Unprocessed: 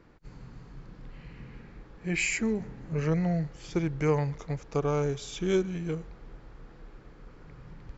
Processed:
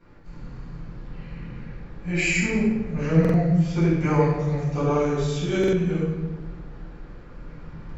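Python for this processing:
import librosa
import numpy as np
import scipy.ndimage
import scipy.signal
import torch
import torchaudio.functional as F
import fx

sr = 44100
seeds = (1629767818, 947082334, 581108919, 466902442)

y = fx.room_shoebox(x, sr, seeds[0], volume_m3=680.0, walls='mixed', distance_m=7.8)
y = fx.buffer_glitch(y, sr, at_s=(3.2, 5.59), block=2048, repeats=2)
y = F.gain(torch.from_numpy(y), -8.5).numpy()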